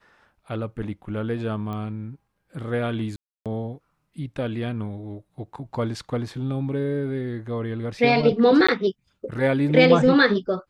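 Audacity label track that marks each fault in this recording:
1.730000	1.730000	pop -22 dBFS
3.160000	3.460000	gap 0.297 s
8.670000	8.690000	gap 15 ms

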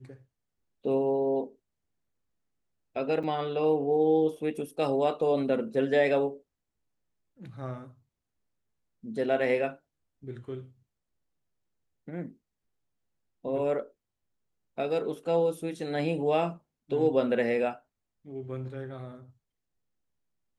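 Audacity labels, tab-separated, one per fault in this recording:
3.230000	3.240000	gap 6.1 ms

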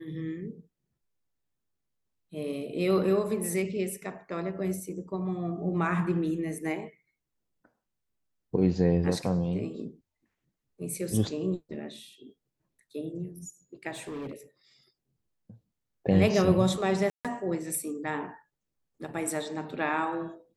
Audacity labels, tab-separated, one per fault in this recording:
13.920000	14.330000	clipped -34 dBFS
17.100000	17.250000	gap 0.147 s

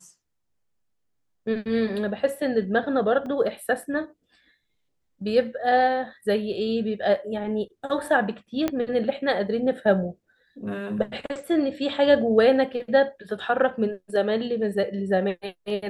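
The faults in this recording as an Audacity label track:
3.260000	3.260000	gap 2.2 ms
8.680000	8.680000	pop -11 dBFS

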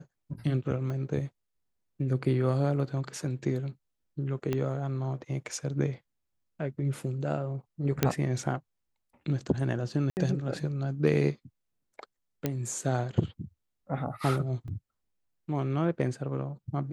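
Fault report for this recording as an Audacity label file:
0.900000	0.900000	pop -26 dBFS
4.530000	4.530000	pop -17 dBFS
8.030000	8.030000	pop -8 dBFS
10.100000	10.170000	gap 69 ms
12.460000	12.460000	pop -14 dBFS
14.680000	14.680000	gap 2.2 ms

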